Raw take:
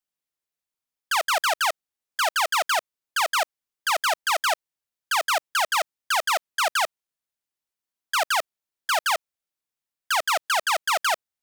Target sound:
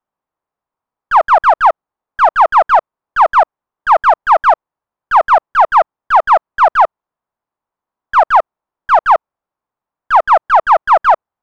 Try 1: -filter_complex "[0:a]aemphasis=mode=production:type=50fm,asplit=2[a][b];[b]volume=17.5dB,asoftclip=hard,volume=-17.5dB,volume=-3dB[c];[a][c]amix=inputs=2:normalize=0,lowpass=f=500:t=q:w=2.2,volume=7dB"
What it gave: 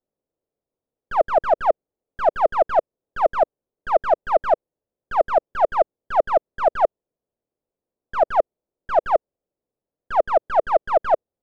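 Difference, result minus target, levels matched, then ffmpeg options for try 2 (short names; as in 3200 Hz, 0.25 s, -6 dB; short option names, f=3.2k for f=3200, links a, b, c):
500 Hz band +7.0 dB
-filter_complex "[0:a]aemphasis=mode=production:type=50fm,asplit=2[a][b];[b]volume=17.5dB,asoftclip=hard,volume=-17.5dB,volume=-3dB[c];[a][c]amix=inputs=2:normalize=0,lowpass=f=1k:t=q:w=2.2,volume=7dB"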